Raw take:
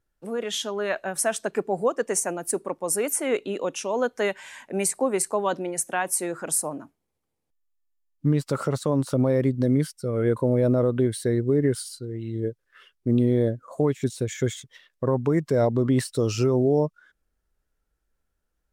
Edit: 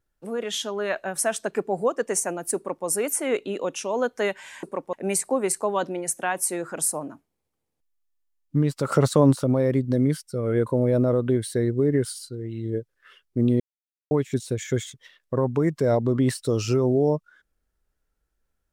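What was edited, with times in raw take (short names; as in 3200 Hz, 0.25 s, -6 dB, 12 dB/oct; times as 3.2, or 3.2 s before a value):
2.56–2.86 copy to 4.63
8.62–9.06 gain +6.5 dB
13.3–13.81 mute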